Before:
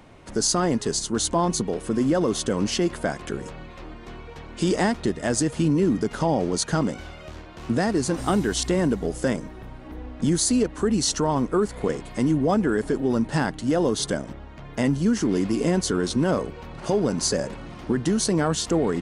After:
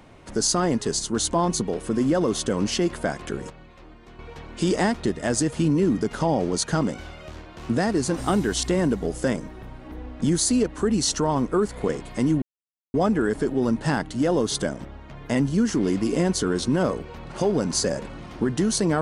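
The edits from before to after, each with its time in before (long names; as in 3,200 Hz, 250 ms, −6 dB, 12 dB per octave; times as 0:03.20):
0:03.50–0:04.19: clip gain −7.5 dB
0:12.42: splice in silence 0.52 s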